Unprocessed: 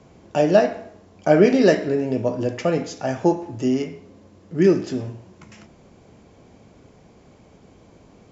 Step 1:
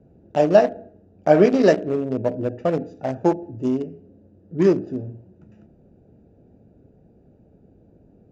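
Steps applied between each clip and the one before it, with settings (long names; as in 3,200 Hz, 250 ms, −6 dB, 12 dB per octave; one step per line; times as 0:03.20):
adaptive Wiener filter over 41 samples
dynamic equaliser 720 Hz, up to +4 dB, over −32 dBFS, Q 0.99
level −1.5 dB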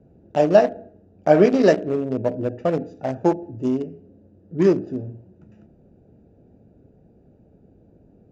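no processing that can be heard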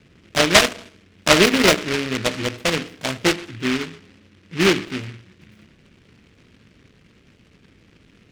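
short delay modulated by noise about 2,100 Hz, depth 0.29 ms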